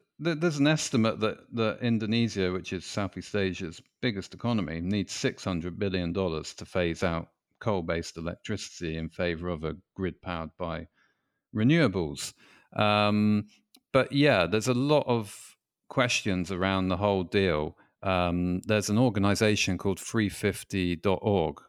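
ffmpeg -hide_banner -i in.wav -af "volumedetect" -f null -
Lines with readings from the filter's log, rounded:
mean_volume: -28.3 dB
max_volume: -9.8 dB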